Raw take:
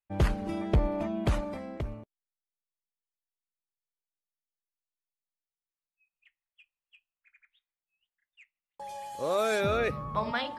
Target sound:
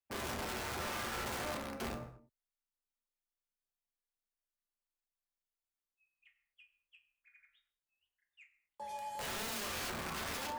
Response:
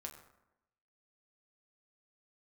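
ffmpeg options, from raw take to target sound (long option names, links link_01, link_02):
-filter_complex "[0:a]afreqshift=15,alimiter=level_in=1dB:limit=-24dB:level=0:latency=1:release=81,volume=-1dB,aeval=exprs='(mod(42.2*val(0)+1,2)-1)/42.2':channel_layout=same[link_01];[1:a]atrim=start_sample=2205,afade=type=out:start_time=0.3:duration=0.01,atrim=end_sample=13671[link_02];[link_01][link_02]afir=irnorm=-1:irlink=0,volume=1dB"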